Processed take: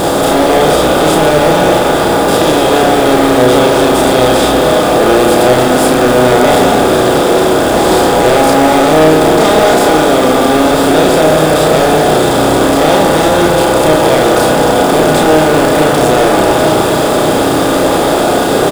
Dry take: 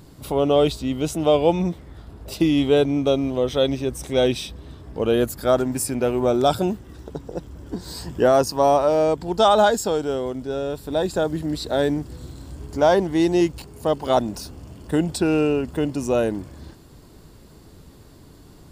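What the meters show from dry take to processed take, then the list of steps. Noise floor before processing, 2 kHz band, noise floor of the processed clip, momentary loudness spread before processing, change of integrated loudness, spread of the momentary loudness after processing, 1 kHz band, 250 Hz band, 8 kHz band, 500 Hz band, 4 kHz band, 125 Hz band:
-47 dBFS, +20.0 dB, -11 dBFS, 17 LU, +12.5 dB, 3 LU, +16.0 dB, +13.0 dB, +17.5 dB, +13.0 dB, +16.0 dB, +12.0 dB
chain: spectral levelling over time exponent 0.2; spring tank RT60 3.3 s, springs 40/51 ms, chirp 35 ms, DRR 1.5 dB; saturation -9 dBFS, distortion -10 dB; doubling 32 ms -3 dB; word length cut 6-bit, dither triangular; trim +3 dB

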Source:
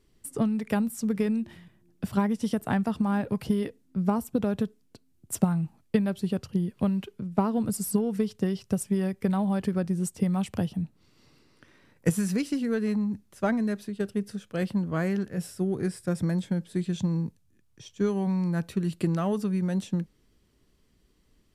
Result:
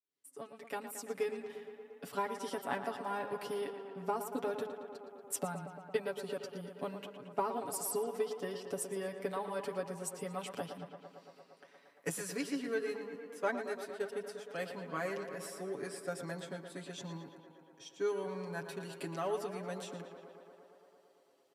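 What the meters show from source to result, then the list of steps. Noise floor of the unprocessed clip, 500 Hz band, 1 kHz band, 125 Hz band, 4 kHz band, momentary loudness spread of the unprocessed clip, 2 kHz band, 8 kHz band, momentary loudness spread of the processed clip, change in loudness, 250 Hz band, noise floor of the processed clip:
-65 dBFS, -5.0 dB, -4.0 dB, -20.0 dB, -4.5 dB, 5 LU, -4.0 dB, -4.5 dB, 14 LU, -11.5 dB, -19.0 dB, -65 dBFS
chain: fade-in on the opening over 1.13 s; high-pass 410 Hz 12 dB/octave; comb 7.1 ms, depth 88%; on a send: tape echo 115 ms, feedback 85%, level -9 dB, low-pass 3.9 kHz; on the sum: trim -7 dB

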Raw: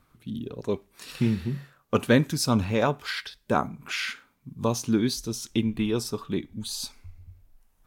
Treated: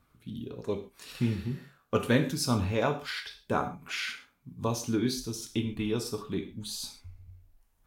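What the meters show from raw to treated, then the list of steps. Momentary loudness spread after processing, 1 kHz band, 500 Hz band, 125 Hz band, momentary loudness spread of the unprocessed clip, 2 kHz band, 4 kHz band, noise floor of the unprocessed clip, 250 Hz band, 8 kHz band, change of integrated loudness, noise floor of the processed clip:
14 LU, -4.0 dB, -4.0 dB, -3.5 dB, 13 LU, -4.0 dB, -3.5 dB, -67 dBFS, -5.0 dB, -4.0 dB, -4.0 dB, -70 dBFS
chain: gated-style reverb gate 160 ms falling, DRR 4.5 dB; trim -5 dB

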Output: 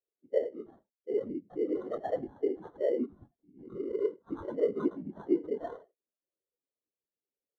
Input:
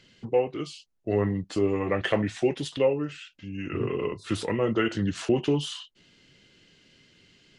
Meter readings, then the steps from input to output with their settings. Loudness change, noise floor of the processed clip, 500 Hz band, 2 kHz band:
-6.5 dB, under -85 dBFS, -5.0 dB, -20.0 dB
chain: coarse spectral quantiser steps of 15 dB; dynamic bell 6.5 kHz, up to +4 dB, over -52 dBFS, Q 0.8; in parallel at -2.5 dB: compressor with a negative ratio -27 dBFS, ratio -0.5; on the sum: overdrive pedal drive 16 dB, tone 7 kHz, clips at -8.5 dBFS; brick-wall FIR high-pass 180 Hz; peaking EQ 9.1 kHz +6 dB 0.32 oct; on a send: delay 84 ms -9 dB; on the sum: whisper effect; sample-rate reducer 2.5 kHz, jitter 0%; spectral contrast expander 2.5:1; trim -8.5 dB

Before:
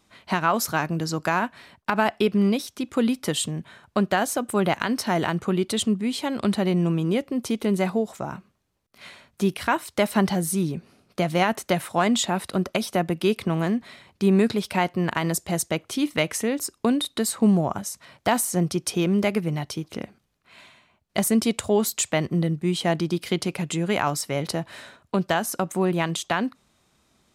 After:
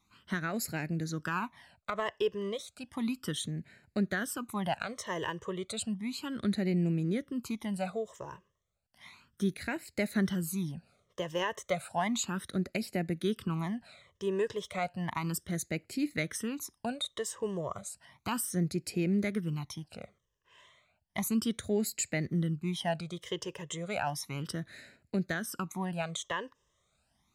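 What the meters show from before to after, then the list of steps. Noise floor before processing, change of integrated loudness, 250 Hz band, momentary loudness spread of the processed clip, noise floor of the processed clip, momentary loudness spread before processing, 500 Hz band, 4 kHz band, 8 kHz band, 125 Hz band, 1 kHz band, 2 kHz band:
-68 dBFS, -10.0 dB, -10.0 dB, 10 LU, -77 dBFS, 8 LU, -10.5 dB, -10.0 dB, -9.5 dB, -8.5 dB, -12.0 dB, -9.0 dB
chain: phase shifter stages 12, 0.33 Hz, lowest notch 230–1100 Hz; trim -7 dB

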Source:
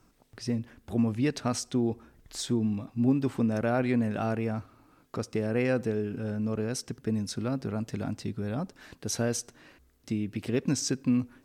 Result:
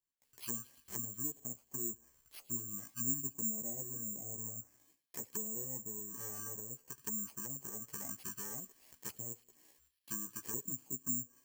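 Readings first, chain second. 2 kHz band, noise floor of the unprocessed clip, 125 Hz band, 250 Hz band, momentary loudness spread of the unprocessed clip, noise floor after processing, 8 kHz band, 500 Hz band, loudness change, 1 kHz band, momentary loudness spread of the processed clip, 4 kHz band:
-18.0 dB, -63 dBFS, -20.0 dB, -20.5 dB, 9 LU, -80 dBFS, 0.0 dB, -22.0 dB, -9.5 dB, -18.0 dB, 10 LU, -18.0 dB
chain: bit-reversed sample order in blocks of 32 samples; gate with hold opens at -49 dBFS; pre-emphasis filter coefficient 0.97; chorus voices 2, 0.55 Hz, delay 15 ms, depth 1.4 ms; treble shelf 2.2 kHz -11 dB; low-pass that closes with the level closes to 350 Hz, closed at -43.5 dBFS; feedback echo behind a high-pass 110 ms, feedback 74%, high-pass 3.9 kHz, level -9 dB; careless resampling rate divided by 6×, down filtered, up zero stuff; trim +11.5 dB

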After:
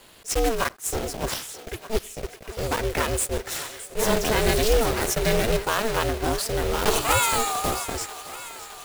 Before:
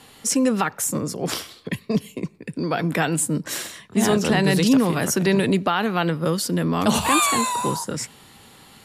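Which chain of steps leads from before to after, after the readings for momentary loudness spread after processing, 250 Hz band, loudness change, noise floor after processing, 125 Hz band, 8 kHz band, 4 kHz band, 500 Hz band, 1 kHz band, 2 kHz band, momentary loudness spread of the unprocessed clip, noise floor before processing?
14 LU, -11.0 dB, -3.0 dB, -47 dBFS, -5.5 dB, -2.0 dB, -0.5 dB, 0.0 dB, -2.0 dB, -1.5 dB, 12 LU, -50 dBFS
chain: block-companded coder 3-bit; ring modulator 220 Hz; thinning echo 615 ms, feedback 71%, high-pass 500 Hz, level -13.5 dB; attacks held to a fixed rise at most 340 dB/s

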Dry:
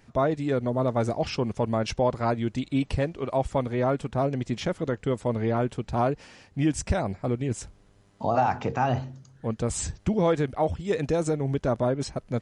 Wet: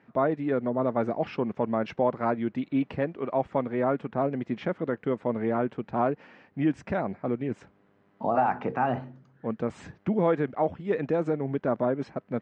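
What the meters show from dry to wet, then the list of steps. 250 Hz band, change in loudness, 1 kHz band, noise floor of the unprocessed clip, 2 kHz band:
-0.5 dB, -1.5 dB, -1.0 dB, -58 dBFS, -1.0 dB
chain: Chebyshev band-pass 200–1900 Hz, order 2

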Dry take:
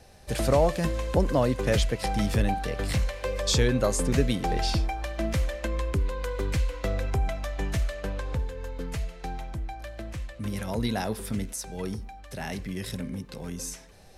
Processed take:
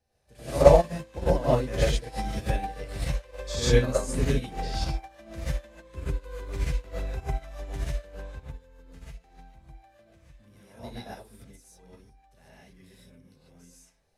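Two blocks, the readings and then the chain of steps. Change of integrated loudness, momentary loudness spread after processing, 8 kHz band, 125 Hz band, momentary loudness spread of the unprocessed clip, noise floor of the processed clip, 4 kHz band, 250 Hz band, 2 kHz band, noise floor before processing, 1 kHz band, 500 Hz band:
+1.5 dB, 20 LU, -5.0 dB, -2.5 dB, 13 LU, -61 dBFS, -4.5 dB, -5.0 dB, -4.0 dB, -47 dBFS, -1.0 dB, +2.5 dB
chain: gated-style reverb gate 170 ms rising, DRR -8 dB; upward expansion 2.5:1, over -25 dBFS; trim -1 dB

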